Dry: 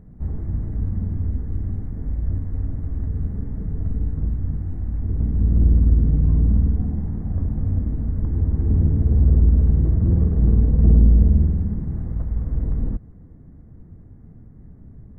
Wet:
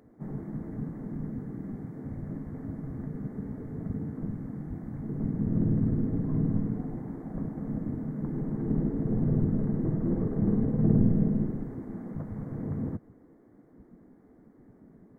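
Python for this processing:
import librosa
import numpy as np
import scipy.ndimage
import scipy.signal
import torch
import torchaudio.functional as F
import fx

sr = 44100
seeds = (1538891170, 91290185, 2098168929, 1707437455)

y = fx.spec_gate(x, sr, threshold_db=-10, keep='weak')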